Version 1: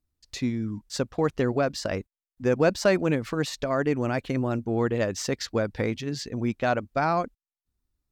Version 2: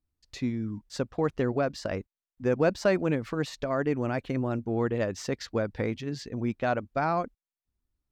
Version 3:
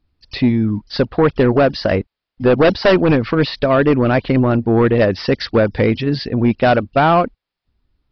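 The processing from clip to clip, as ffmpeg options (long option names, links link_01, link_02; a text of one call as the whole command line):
ffmpeg -i in.wav -af "highshelf=frequency=4000:gain=-7.5,volume=-2.5dB" out.wav
ffmpeg -i in.wav -af "aresample=11025,aeval=exprs='0.251*sin(PI/2*2.24*val(0)/0.251)':channel_layout=same,aresample=44100,volume=5.5dB" -ar 44100 -c:a ac3 -b:a 32k out.ac3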